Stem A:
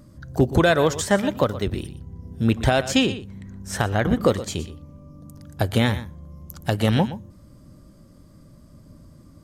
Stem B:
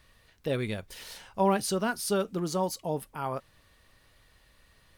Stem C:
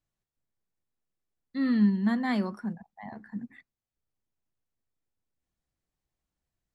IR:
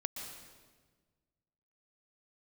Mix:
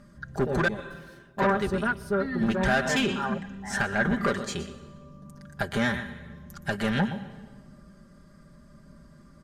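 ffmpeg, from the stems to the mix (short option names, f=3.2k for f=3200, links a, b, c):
-filter_complex "[0:a]lowpass=9.5k,volume=-7dB,asplit=3[a][b][c];[a]atrim=end=0.68,asetpts=PTS-STARTPTS,afade=t=out:st=0.676:d=0.004:c=hsin[d];[b]atrim=start=0.68:end=1.38,asetpts=PTS-STARTPTS,volume=0[e];[c]atrim=start=1.38,asetpts=PTS-STARTPTS,afade=t=in:d=0.004:c=hsin[f];[d][e][f]concat=n=3:v=0:a=1,asplit=2[g][h];[h]volume=-11.5dB[i];[1:a]afwtdn=0.0224,volume=-3dB,asplit=2[j][k];[k]volume=-18.5dB[l];[2:a]acompressor=threshold=-31dB:ratio=6,adelay=650,volume=-0.5dB[m];[3:a]atrim=start_sample=2205[n];[i][l]amix=inputs=2:normalize=0[o];[o][n]afir=irnorm=-1:irlink=0[p];[g][j][m][p]amix=inputs=4:normalize=0,asoftclip=type=tanh:threshold=-21.5dB,equalizer=f=1.6k:t=o:w=0.69:g=11.5,aecho=1:1:5:0.68"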